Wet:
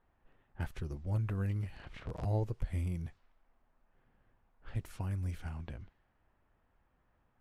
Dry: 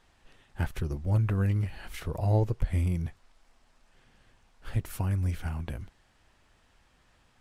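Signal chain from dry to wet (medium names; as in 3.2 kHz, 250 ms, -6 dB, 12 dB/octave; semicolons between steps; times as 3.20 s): 1.75–2.25 s: cycle switcher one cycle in 3, inverted; level-controlled noise filter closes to 1.4 kHz, open at -26 dBFS; trim -8 dB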